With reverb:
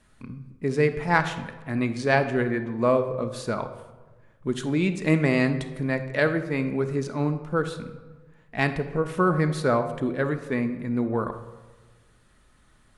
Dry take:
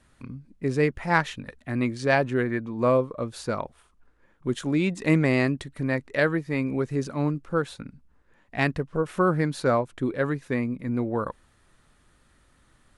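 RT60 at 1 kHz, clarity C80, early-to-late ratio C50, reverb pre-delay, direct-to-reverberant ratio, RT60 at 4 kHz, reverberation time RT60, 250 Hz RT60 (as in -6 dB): 1.2 s, 13.0 dB, 10.5 dB, 5 ms, 7.5 dB, 0.75 s, 1.3 s, 1.5 s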